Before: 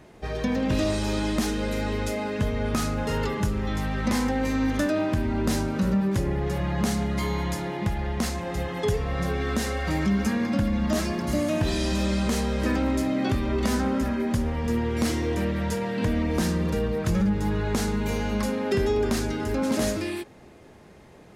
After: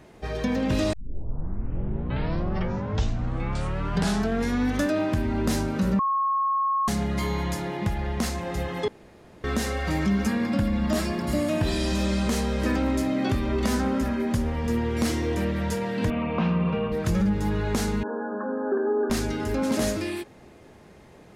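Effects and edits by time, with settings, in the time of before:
0.93 s: tape start 3.93 s
5.99–6.88 s: bleep 1.09 kHz -21 dBFS
8.88–9.44 s: room tone
10.27–11.88 s: band-stop 6.2 kHz, Q 9.7
16.10–16.92 s: cabinet simulation 130–2900 Hz, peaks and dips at 170 Hz +6 dB, 320 Hz -10 dB, 690 Hz +3 dB, 1.1 kHz +9 dB, 1.8 kHz -8 dB, 2.6 kHz +9 dB
18.03–19.10 s: brick-wall FIR band-pass 220–1800 Hz

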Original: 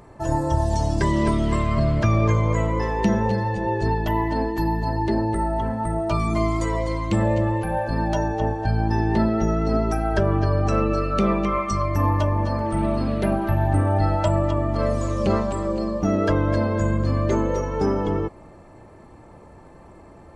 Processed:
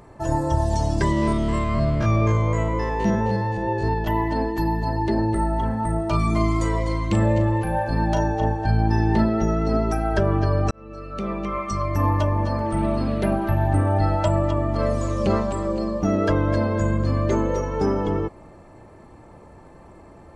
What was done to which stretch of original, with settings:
1.12–4.07 s: spectrogram pixelated in time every 50 ms
5.15–9.24 s: doubling 37 ms -9 dB
10.71–12.05 s: fade in

